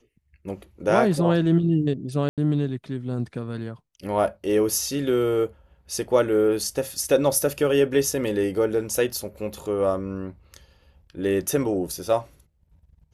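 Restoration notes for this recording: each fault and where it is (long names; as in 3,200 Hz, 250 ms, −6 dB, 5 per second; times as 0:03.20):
0:02.29–0:02.38: drop-out 87 ms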